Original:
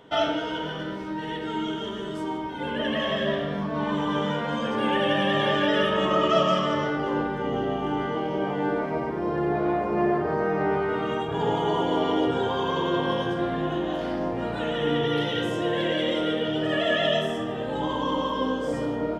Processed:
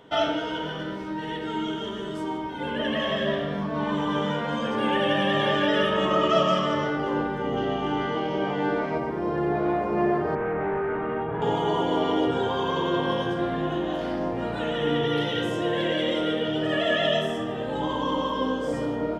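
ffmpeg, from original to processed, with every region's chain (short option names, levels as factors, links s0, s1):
-filter_complex "[0:a]asettb=1/sr,asplit=3[s0][s1][s2];[s0]atrim=end=7.574[s3];[s1]atrim=start=7.57:end=8.98,asetpts=PTS-STARTPTS,afade=t=in:d=0.004:c=qsin,afade=t=out:st=1.406:d=0.004:c=qsin,lowpass=5800,highshelf=f=2600:g=8.5[s4];[s2]atrim=start=8.976[s5];[s3][s4]acrossfade=d=0.004:c1=hsin:c2=qsin[s6];[s6][s5]acrossfade=d=0.004:c1=qsin:c2=hsin,asettb=1/sr,asplit=3[s7][s8][s9];[s7]atrim=end=10.354[s10];[s8]atrim=start=10.35:end=11.42,asetpts=PTS-STARTPTS,afade=t=in:d=0.004:c=qsin,afade=t=out:st=1.066:d=0.004:c=qsin,volume=17.8,asoftclip=hard,volume=0.0562,lowpass=f=2100:w=0.5412,lowpass=f=2100:w=1.3066,asplit=2[s11][s12];[s12]adelay=43,volume=0.224[s13];[s11][s13]amix=inputs=2:normalize=0,atrim=end_sample=47187[s14];[s9]atrim=start=11.416[s15];[s10][s14]acrossfade=d=0.004:c1=hsin:c2=qsin[s16];[s16][s15]acrossfade=d=0.004:c1=qsin:c2=hsin"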